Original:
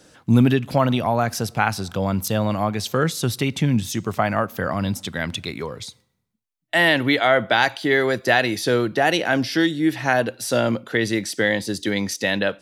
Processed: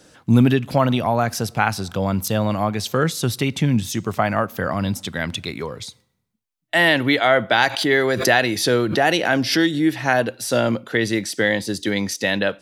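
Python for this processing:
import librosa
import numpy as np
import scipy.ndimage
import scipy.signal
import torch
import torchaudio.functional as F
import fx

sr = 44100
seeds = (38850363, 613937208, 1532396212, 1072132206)

y = fx.pre_swell(x, sr, db_per_s=82.0, at=(7.58, 9.88))
y = y * librosa.db_to_amplitude(1.0)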